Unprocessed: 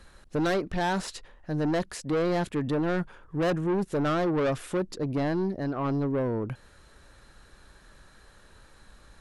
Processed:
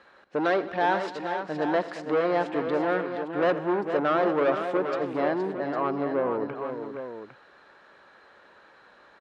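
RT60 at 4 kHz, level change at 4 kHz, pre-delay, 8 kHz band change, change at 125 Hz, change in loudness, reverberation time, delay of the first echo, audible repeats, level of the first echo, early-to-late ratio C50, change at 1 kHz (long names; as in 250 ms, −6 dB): no reverb audible, −2.0 dB, no reverb audible, below −10 dB, −10.0 dB, +1.5 dB, no reverb audible, 84 ms, 5, −18.5 dB, no reverb audible, +6.0 dB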